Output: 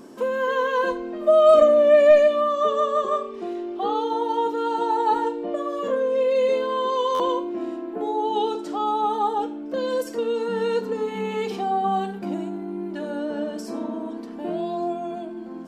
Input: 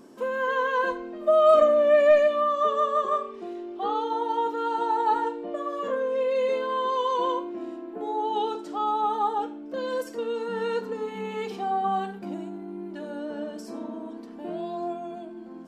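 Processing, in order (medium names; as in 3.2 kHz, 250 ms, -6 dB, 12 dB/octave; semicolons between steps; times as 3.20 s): dynamic bell 1.4 kHz, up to -6 dB, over -38 dBFS, Q 0.76; buffer glitch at 7.14 s, samples 512, times 4; trim +6 dB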